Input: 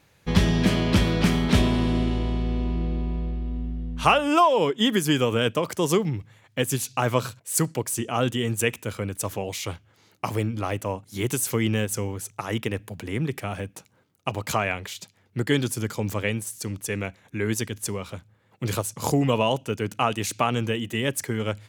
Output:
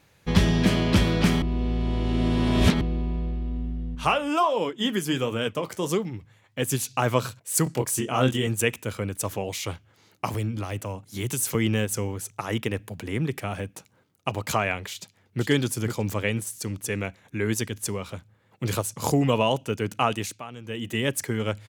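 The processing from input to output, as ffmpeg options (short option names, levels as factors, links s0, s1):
-filter_complex "[0:a]asettb=1/sr,asplit=3[s0][s1][s2];[s0]atrim=end=3.954[s3];[s1]atrim=start=3.95:end=6.62,asetpts=PTS-STARTPTS,afade=t=in:d=0.004:c=qsin,afade=t=out:st=2.666:d=0.004:c=qsin,flanger=delay=3.3:depth=7.8:regen=-65:speed=1.4:shape=sinusoidal[s4];[s2]atrim=start=6.616[s5];[s3][s4]acrossfade=d=0.004:c1=hsin:c2=qsin[s6];[s6][s5]acrossfade=d=0.004:c1=qsin:c2=hsin,asettb=1/sr,asplit=3[s7][s8][s9];[s7]atrim=end=7.644[s10];[s8]atrim=start=7.64:end=8.47,asetpts=PTS-STARTPTS,afade=t=in:d=0.004:c=qsin,afade=t=out:st=0.826:d=0.004:c=qsin,asplit=2[s11][s12];[s12]adelay=23,volume=0.631[s13];[s11][s13]amix=inputs=2:normalize=0,atrim=end_sample=36603[s14];[s9]atrim=start=8.466[s15];[s10][s14]acrossfade=d=0.004:c1=hsin:c2=qsin[s16];[s16][s15]acrossfade=d=0.004:c1=qsin:c2=hsin,asettb=1/sr,asplit=3[s17][s18][s19];[s17]atrim=end=10.344[s20];[s18]atrim=start=10.34:end=11.55,asetpts=PTS-STARTPTS,afade=t=in:d=0.004:c=qsin,afade=t=out:st=1.206:d=0.004:c=qsin,acrossover=split=170|3000[s21][s22][s23];[s22]acompressor=threshold=0.0316:ratio=6:attack=3.2:release=140:knee=2.83:detection=peak[s24];[s21][s24][s23]amix=inputs=3:normalize=0[s25];[s19]atrim=start=11.546[s26];[s20][s25]acrossfade=d=0.004:c1=hsin:c2=qsin[s27];[s27][s26]acrossfade=d=0.004:c1=qsin:c2=hsin,asplit=2[s28][s29];[s29]afade=t=in:st=14.91:d=0.01,afade=t=out:st=15.44:d=0.01,aecho=0:1:490|980|1470|1960:0.501187|0.150356|0.0451069|0.0135321[s30];[s28][s30]amix=inputs=2:normalize=0,asplit=5[s31][s32][s33][s34][s35];[s31]atrim=end=1.422[s36];[s32]atrim=start=1.418:end=2.812,asetpts=PTS-STARTPTS,areverse[s37];[s33]atrim=start=2.808:end=20.4,asetpts=PTS-STARTPTS,afade=t=out:st=17.342:d=0.25:silence=0.16788[s38];[s34]atrim=start=20.4:end=20.64,asetpts=PTS-STARTPTS,volume=0.168[s39];[s35]atrim=start=20.64,asetpts=PTS-STARTPTS,afade=t=in:d=0.25:silence=0.16788[s40];[s36][s37]acrossfade=d=0.004:c1=hsin:c2=hsin[s41];[s38][s39][s40]concat=n=3:v=0:a=1[s42];[s41][s42]acrossfade=d=0.004:c1=hsin:c2=hsin"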